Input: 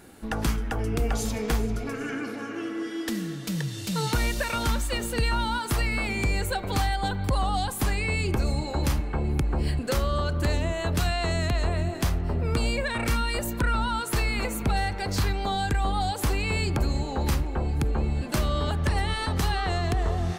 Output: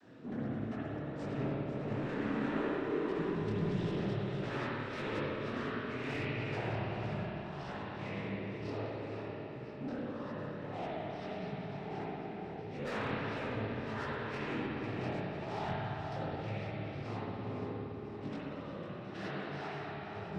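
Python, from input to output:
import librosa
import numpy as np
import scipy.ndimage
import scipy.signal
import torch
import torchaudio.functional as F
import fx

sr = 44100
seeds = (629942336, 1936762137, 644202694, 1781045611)

y = fx.cvsd(x, sr, bps=32000)
y = fx.lowpass(y, sr, hz=1600.0, slope=6)
y = fx.low_shelf(y, sr, hz=150.0, db=3.0)
y = fx.over_compress(y, sr, threshold_db=-29.0, ratio=-0.5)
y = fx.noise_vocoder(y, sr, seeds[0], bands=12)
y = fx.rotary(y, sr, hz=0.75)
y = 10.0 ** (-30.5 / 20.0) * np.tanh(y / 10.0 ** (-30.5 / 20.0))
y = fx.echo_feedback(y, sr, ms=502, feedback_pct=57, wet_db=-10.0)
y = fx.rev_spring(y, sr, rt60_s=3.3, pass_ms=(56,), chirp_ms=45, drr_db=-7.5)
y = fx.detune_double(y, sr, cents=54)
y = y * librosa.db_to_amplitude(-5.0)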